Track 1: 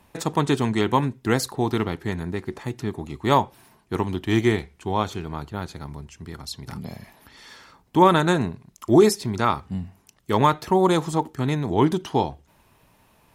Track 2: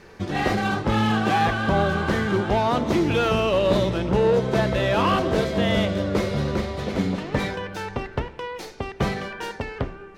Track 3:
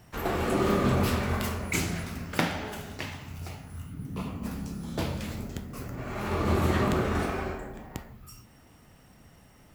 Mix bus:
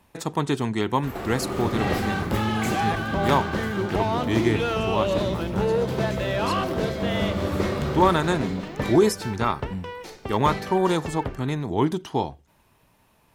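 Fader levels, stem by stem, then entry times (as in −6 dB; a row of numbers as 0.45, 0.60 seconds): −3.0, −4.0, −4.0 decibels; 0.00, 1.45, 0.90 seconds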